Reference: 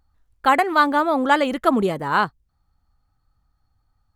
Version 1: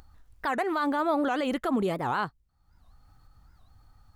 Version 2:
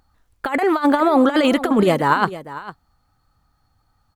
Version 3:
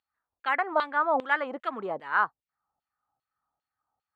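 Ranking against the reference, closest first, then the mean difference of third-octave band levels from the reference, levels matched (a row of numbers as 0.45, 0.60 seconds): 1, 2, 3; 3.5, 6.0, 7.5 decibels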